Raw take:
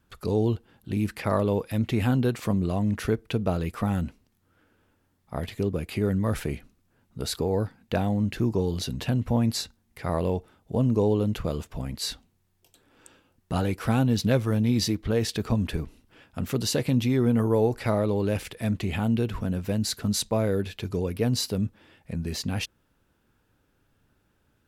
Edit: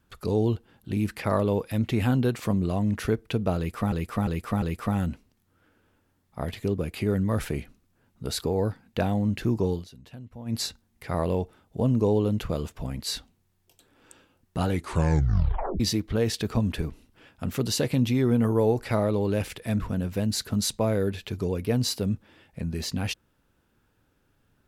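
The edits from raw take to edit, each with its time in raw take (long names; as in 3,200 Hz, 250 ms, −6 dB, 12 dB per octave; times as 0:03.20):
0:03.57–0:03.92: repeat, 4 plays
0:08.67–0:09.53: duck −17.5 dB, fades 0.13 s
0:13.64: tape stop 1.11 s
0:18.75–0:19.32: remove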